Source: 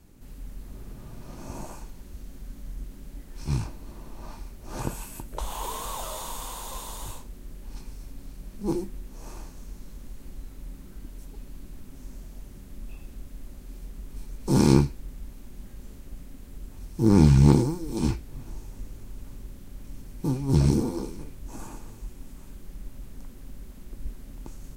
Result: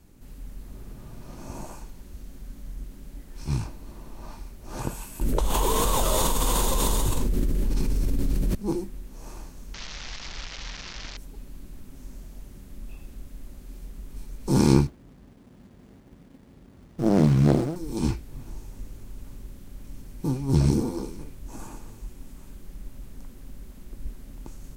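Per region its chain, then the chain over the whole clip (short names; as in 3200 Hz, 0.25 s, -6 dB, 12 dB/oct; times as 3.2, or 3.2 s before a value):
5.21–8.55 resonant low shelf 560 Hz +6 dB, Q 1.5 + fast leveller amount 100%
9.74–11.17 delta modulation 32 kbps, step -40.5 dBFS + EQ curve 160 Hz 0 dB, 270 Hz -4 dB, 2000 Hz +14 dB
14.87–17.76 HPF 110 Hz + running maximum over 33 samples
whole clip: dry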